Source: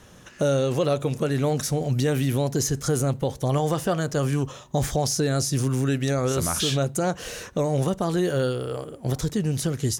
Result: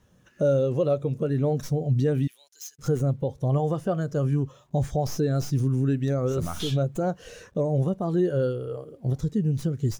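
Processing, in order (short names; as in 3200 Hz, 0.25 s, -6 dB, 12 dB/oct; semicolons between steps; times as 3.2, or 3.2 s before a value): tracing distortion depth 0.083 ms; in parallel at -2 dB: compressor 6:1, threshold -33 dBFS, peak gain reduction 13.5 dB; 2.27–2.79 on the sum: Bessel high-pass 2800 Hz, order 2; requantised 8-bit, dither none; spectral expander 1.5:1; gain -3 dB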